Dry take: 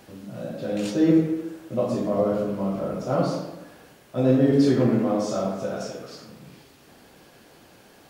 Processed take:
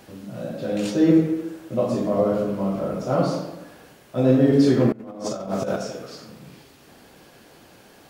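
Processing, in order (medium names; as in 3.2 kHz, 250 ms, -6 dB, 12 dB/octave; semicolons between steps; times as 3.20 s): 4.92–5.76 s: compressor with a negative ratio -30 dBFS, ratio -0.5; trim +2 dB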